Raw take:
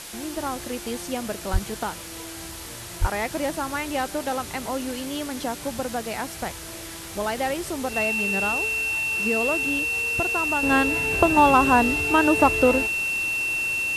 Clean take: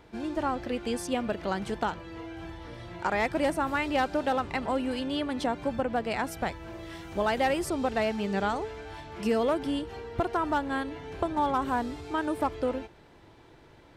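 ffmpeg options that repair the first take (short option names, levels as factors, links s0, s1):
-filter_complex "[0:a]bandreject=f=2700:w=30,asplit=3[s0][s1][s2];[s0]afade=t=out:st=1.52:d=0.02[s3];[s1]highpass=f=140:w=0.5412,highpass=f=140:w=1.3066,afade=t=in:st=1.52:d=0.02,afade=t=out:st=1.64:d=0.02[s4];[s2]afade=t=in:st=1.64:d=0.02[s5];[s3][s4][s5]amix=inputs=3:normalize=0,asplit=3[s6][s7][s8];[s6]afade=t=out:st=3:d=0.02[s9];[s7]highpass=f=140:w=0.5412,highpass=f=140:w=1.3066,afade=t=in:st=3:d=0.02,afade=t=out:st=3.12:d=0.02[s10];[s8]afade=t=in:st=3.12:d=0.02[s11];[s9][s10][s11]amix=inputs=3:normalize=0,afwtdn=0.014,asetnsamples=n=441:p=0,asendcmd='10.63 volume volume -10.5dB',volume=1"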